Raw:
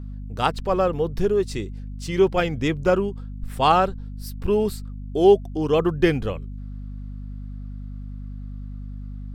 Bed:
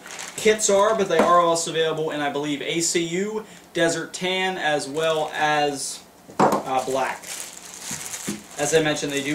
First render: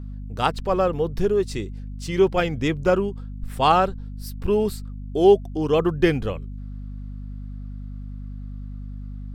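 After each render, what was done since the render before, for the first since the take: nothing audible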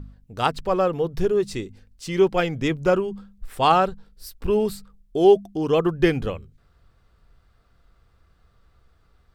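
de-hum 50 Hz, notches 5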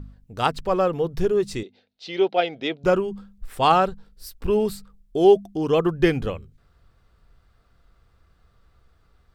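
1.63–2.84 speaker cabinet 380–4500 Hz, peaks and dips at 690 Hz +7 dB, 1100 Hz -10 dB, 1700 Hz -5 dB, 3800 Hz +8 dB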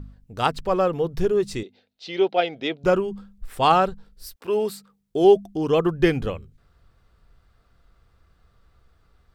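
4.34–5.22 HPF 470 Hz -> 110 Hz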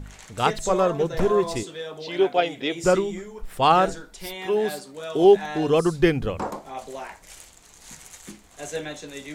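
add bed -12.5 dB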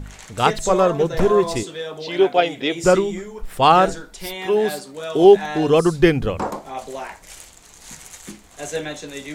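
gain +4.5 dB; limiter -1 dBFS, peak gain reduction 1 dB

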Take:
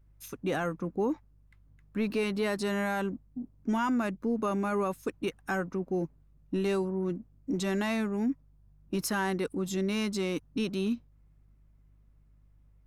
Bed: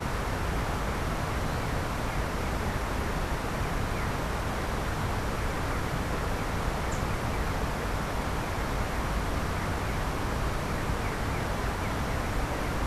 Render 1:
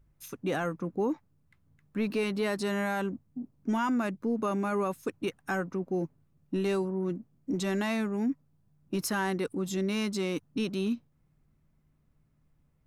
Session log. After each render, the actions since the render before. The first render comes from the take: de-hum 50 Hz, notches 2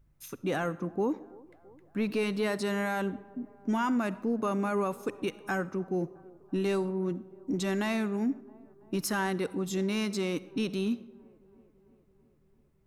band-limited delay 0.333 s, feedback 65%, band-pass 540 Hz, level -22 dB; digital reverb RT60 0.83 s, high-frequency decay 0.75×, pre-delay 20 ms, DRR 17.5 dB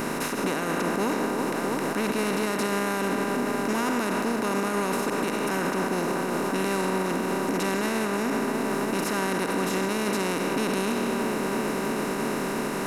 per-bin compression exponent 0.2; limiter -17.5 dBFS, peak gain reduction 10 dB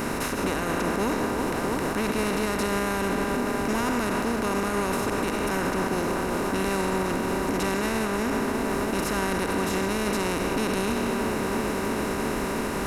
add bed -7.5 dB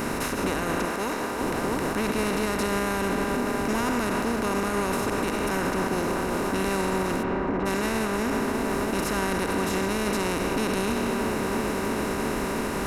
0.85–1.41 low shelf 330 Hz -9 dB; 7.22–7.65 LPF 2800 Hz -> 1500 Hz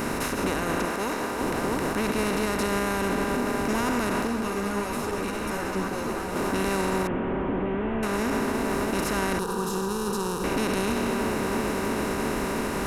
4.27–6.36 ensemble effect; 7.07–8.03 delta modulation 16 kbps, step -39.5 dBFS; 9.39–10.44 fixed phaser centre 420 Hz, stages 8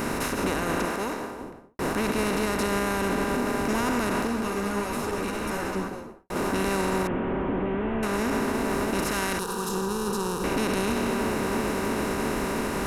0.87–1.79 studio fade out; 5.65–6.3 studio fade out; 9.11–9.69 tilt shelf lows -3.5 dB, about 1400 Hz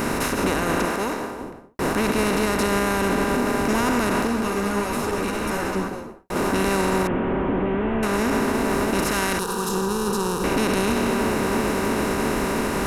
gain +4.5 dB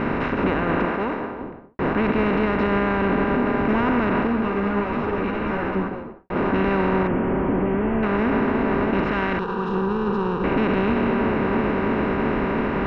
LPF 2700 Hz 24 dB/oct; bell 160 Hz +2.5 dB 1.9 oct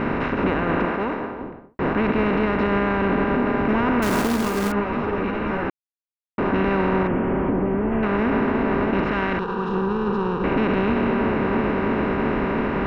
4.02–4.72 companded quantiser 4-bit; 5.7–6.38 mute; 7.5–7.92 high shelf 2400 Hz -9.5 dB

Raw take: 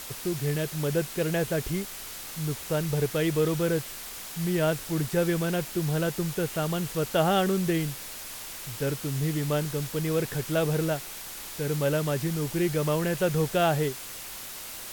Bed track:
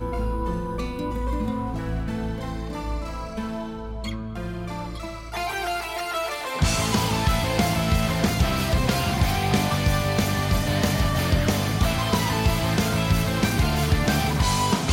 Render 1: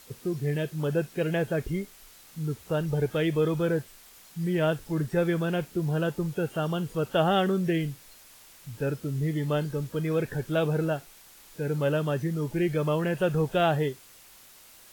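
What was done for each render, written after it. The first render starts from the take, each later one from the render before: noise print and reduce 13 dB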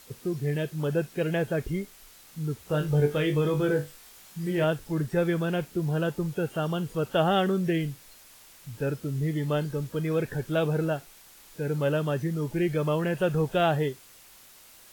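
2.67–4.64 flutter echo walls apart 3.5 m, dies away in 0.22 s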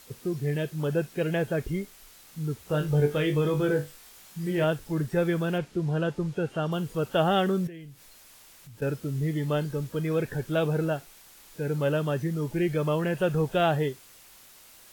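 5.58–6.72 air absorption 53 m; 7.67–8.82 compressor 2.5:1, threshold -48 dBFS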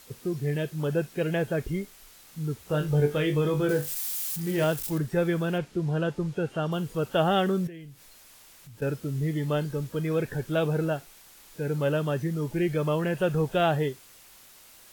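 3.69–4.98 switching spikes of -28.5 dBFS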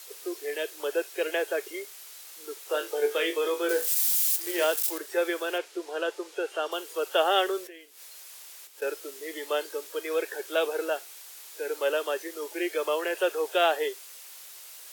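steep high-pass 360 Hz 48 dB/oct; high shelf 2100 Hz +7.5 dB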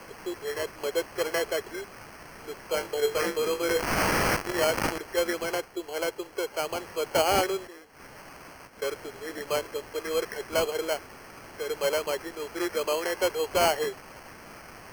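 sample-and-hold 12×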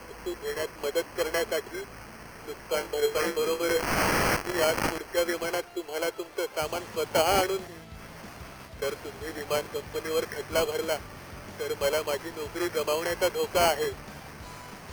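add bed track -24.5 dB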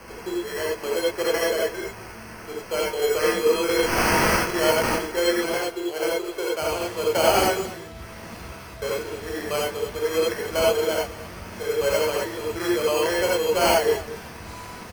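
echo 0.224 s -16.5 dB; non-linear reverb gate 0.11 s rising, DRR -3.5 dB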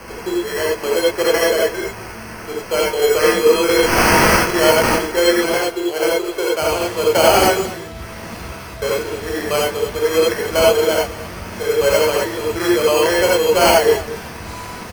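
gain +7.5 dB; limiter -1 dBFS, peak gain reduction 2.5 dB

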